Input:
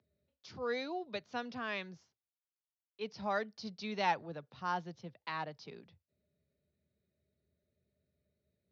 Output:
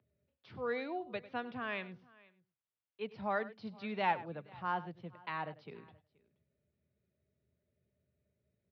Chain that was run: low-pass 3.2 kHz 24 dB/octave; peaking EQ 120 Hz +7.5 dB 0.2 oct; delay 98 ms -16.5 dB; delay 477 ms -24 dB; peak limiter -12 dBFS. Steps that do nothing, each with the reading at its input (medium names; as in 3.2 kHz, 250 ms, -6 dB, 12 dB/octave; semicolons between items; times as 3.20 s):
peak limiter -12 dBFS: peak at its input -19.5 dBFS